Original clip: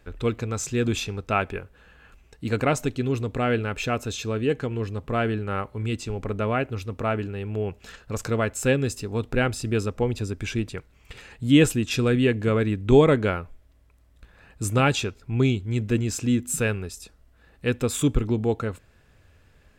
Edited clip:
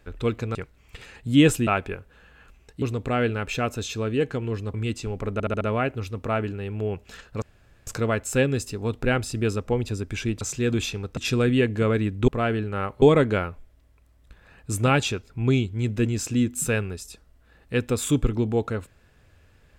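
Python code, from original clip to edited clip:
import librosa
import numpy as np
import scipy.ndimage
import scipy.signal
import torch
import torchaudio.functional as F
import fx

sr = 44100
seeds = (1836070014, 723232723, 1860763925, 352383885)

y = fx.edit(x, sr, fx.swap(start_s=0.55, length_s=0.76, other_s=10.71, other_length_s=1.12),
    fx.cut(start_s=2.46, length_s=0.65),
    fx.move(start_s=5.03, length_s=0.74, to_s=12.94),
    fx.stutter(start_s=6.36, slice_s=0.07, count=5),
    fx.insert_room_tone(at_s=8.17, length_s=0.45), tone=tone)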